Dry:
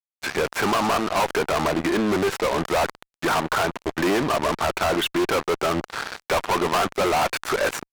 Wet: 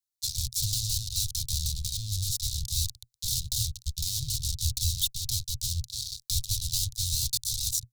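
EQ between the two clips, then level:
Chebyshev band-stop filter 120–3,800 Hz, order 5
dynamic equaliser 3,700 Hz, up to −4 dB, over −48 dBFS, Q 0.97
+8.0 dB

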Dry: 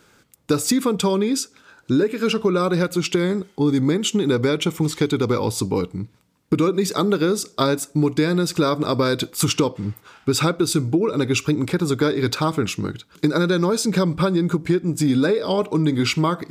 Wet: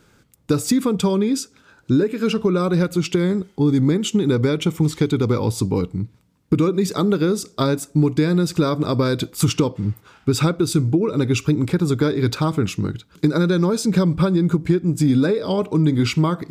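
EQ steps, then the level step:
low-shelf EQ 240 Hz +10 dB
−3.0 dB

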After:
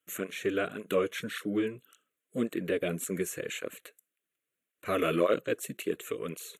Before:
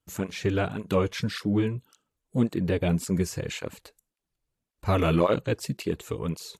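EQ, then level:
high-pass filter 460 Hz 12 dB per octave
dynamic equaliser 2,300 Hz, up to −7 dB, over −47 dBFS, Q 0.97
phaser with its sweep stopped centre 2,100 Hz, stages 4
+5.5 dB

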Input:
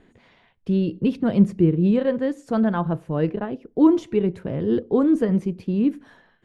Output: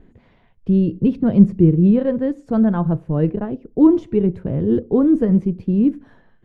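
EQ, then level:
spectral tilt −3 dB per octave
−1.5 dB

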